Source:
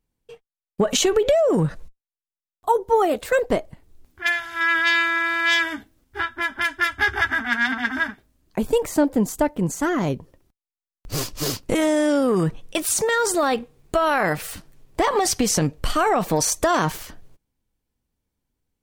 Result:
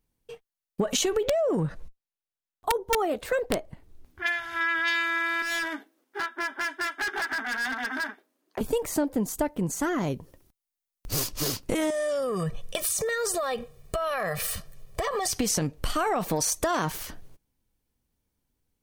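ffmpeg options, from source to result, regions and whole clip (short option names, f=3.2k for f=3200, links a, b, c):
-filter_complex "[0:a]asettb=1/sr,asplit=3[a][b][c];[a]atrim=end=1.254[d];[b]atrim=start=1.25:end=4.88,asetpts=PTS-STARTPTS,afade=t=in:d=0.004:c=qsin,afade=t=out:st=3.626:d=0.004:c=qsin,highshelf=f=4.8k:g=-8,aeval=exprs='(mod(2.66*val(0)+1,2)-1)/2.66':c=same[e];[c]atrim=start=4.876[f];[d][e]acrossfade=d=0.004:c1=hsin:c2=qsin[g];[g][f]acrossfade=d=0.004:c1=qsin:c2=hsin,asettb=1/sr,asplit=3[h][i][j];[h]atrim=end=5.424[k];[i]atrim=start=5.42:end=8.61,asetpts=PTS-STARTPTS,afade=t=in:d=0.004:c=qsin,afade=t=out:st=3.186:d=0.004:c=qsin,highpass=f=310:w=0.5412,highpass=f=310:w=1.3066,highshelf=f=2.5k:g=-9,asoftclip=type=hard:threshold=-24.5dB[l];[j]atrim=start=8.606[m];[k][l]acrossfade=d=0.004:c1=hsin:c2=qsin[n];[n][m]acrossfade=d=0.004:c1=qsin:c2=hsin,asettb=1/sr,asplit=3[o][p][q];[o]atrim=end=10.114[r];[p]atrim=start=10.11:end=11.29,asetpts=PTS-STARTPTS,afade=t=in:d=0.004:c=qsin,afade=t=out:st=1.176:d=0.004:c=qsin,highshelf=f=5.6k:g=5,aeval=exprs='clip(val(0),-1,0.119)':c=same[s];[q]atrim=start=11.286[t];[r][s]acrossfade=d=0.004:c1=hsin:c2=qsin[u];[u][t]acrossfade=d=0.004:c1=qsin:c2=hsin,asettb=1/sr,asplit=3[v][w][x];[v]atrim=end=11.904[y];[w]atrim=start=11.9:end=15.33,asetpts=PTS-STARTPTS,afade=t=in:d=0.004:c=qsin,afade=t=out:st=3.426:d=0.004:c=qsin,aecho=1:1:1.7:0.87,atrim=end_sample=151263,acompressor=threshold=-22dB:ratio=5:attack=3.2:release=140:knee=1:detection=peak,aeval=exprs='clip(val(0),-1,0.141)':c=same[z];[x]atrim=start=15.326[aa];[y][z]acrossfade=d=0.004:c1=hsin:c2=qsin[ab];[ab][aa]acrossfade=d=0.004:c1=qsin:c2=hsin,highshelf=f=6.9k:g=4.5,bandreject=f=7.5k:w=24,acompressor=threshold=-28dB:ratio=2"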